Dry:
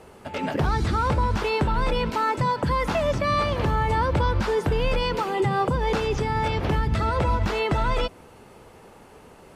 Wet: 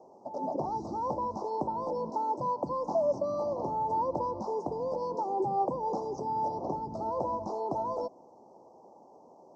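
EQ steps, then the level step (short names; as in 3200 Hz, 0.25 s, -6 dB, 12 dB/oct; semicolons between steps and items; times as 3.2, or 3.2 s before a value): inverse Chebyshev band-stop 1600–3400 Hz, stop band 50 dB; air absorption 100 m; speaker cabinet 390–5600 Hz, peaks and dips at 440 Hz -8 dB, 1300 Hz -9 dB, 1900 Hz -8 dB, 4500 Hz -6 dB; 0.0 dB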